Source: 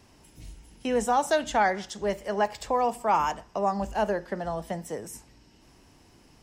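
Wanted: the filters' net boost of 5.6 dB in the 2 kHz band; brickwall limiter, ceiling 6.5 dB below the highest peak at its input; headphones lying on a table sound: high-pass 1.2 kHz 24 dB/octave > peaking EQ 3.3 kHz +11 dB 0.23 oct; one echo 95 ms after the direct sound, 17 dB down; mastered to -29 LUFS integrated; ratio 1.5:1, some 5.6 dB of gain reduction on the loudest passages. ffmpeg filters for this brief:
-af "equalizer=f=2000:t=o:g=7.5,acompressor=threshold=0.0224:ratio=1.5,alimiter=limit=0.0794:level=0:latency=1,highpass=f=1200:w=0.5412,highpass=f=1200:w=1.3066,equalizer=f=3300:t=o:w=0.23:g=11,aecho=1:1:95:0.141,volume=2.82"

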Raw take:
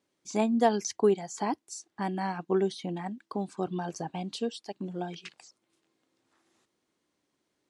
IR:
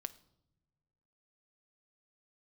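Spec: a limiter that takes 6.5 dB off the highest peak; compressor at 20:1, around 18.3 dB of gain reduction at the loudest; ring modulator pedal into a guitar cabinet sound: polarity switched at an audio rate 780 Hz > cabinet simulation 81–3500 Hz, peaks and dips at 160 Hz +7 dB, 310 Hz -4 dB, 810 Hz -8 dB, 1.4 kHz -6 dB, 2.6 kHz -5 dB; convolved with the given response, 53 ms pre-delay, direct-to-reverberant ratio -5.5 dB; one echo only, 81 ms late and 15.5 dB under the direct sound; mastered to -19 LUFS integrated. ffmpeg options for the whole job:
-filter_complex "[0:a]acompressor=threshold=0.0158:ratio=20,alimiter=level_in=2.51:limit=0.0631:level=0:latency=1,volume=0.398,aecho=1:1:81:0.168,asplit=2[s0][s1];[1:a]atrim=start_sample=2205,adelay=53[s2];[s1][s2]afir=irnorm=-1:irlink=0,volume=2.66[s3];[s0][s3]amix=inputs=2:normalize=0,aeval=exprs='val(0)*sgn(sin(2*PI*780*n/s))':c=same,highpass=81,equalizer=f=160:t=q:w=4:g=7,equalizer=f=310:t=q:w=4:g=-4,equalizer=f=810:t=q:w=4:g=-8,equalizer=f=1400:t=q:w=4:g=-6,equalizer=f=2600:t=q:w=4:g=-5,lowpass=f=3500:w=0.5412,lowpass=f=3500:w=1.3066,volume=10"

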